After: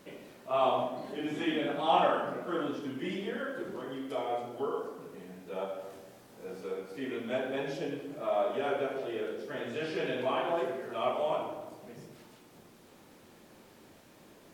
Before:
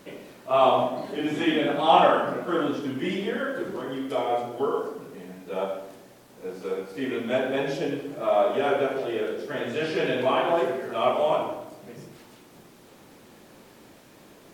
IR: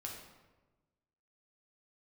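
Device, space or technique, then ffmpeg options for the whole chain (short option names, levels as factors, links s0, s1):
ducked reverb: -filter_complex "[0:a]asettb=1/sr,asplit=3[s0][s1][s2];[s0]atrim=end=5.774[s3];[s1]atrim=start=5.77:end=6.61,asetpts=PTS-STARTPTS,afade=t=in:d=0.004:c=qsin,afade=t=out:st=0.836:d=0.004:c=qsin,asplit=2[s4][s5];[s5]adelay=23,volume=0.794[s6];[s4][s6]amix=inputs=2:normalize=0,atrim=end_sample=37044[s7];[s2]atrim=start=6.606[s8];[s3][s7]acrossfade=d=0.004:c1=hsin:c2=qsin[s9];[s9][s8]acrossfade=d=0.004:c1=qsin:c2=hsin,asplit=3[s10][s11][s12];[1:a]atrim=start_sample=2205[s13];[s11][s13]afir=irnorm=-1:irlink=0[s14];[s12]apad=whole_len=641067[s15];[s14][s15]sidechaincompress=threshold=0.0141:ratio=8:attack=16:release=126,volume=0.631[s16];[s10][s16]amix=inputs=2:normalize=0,volume=0.376"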